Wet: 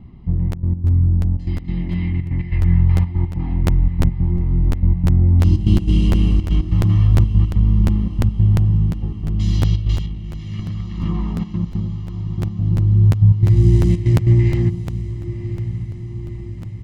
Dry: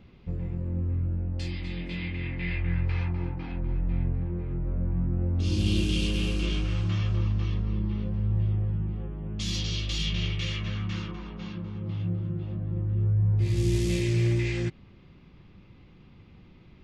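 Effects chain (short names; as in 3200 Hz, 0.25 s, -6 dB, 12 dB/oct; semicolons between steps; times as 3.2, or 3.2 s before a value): step gate "xxxxx.x." 143 bpm -12 dB; 9.96–12.35 negative-ratio compressor -35 dBFS, ratio -0.5; tilt shelf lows +8.5 dB, about 1200 Hz; notch 1500 Hz, Q 13; comb 1 ms, depth 72%; diffused feedback echo 1.078 s, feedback 60%, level -12.5 dB; crackling interface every 0.35 s, samples 512, repeat, from 0.51; gain +1 dB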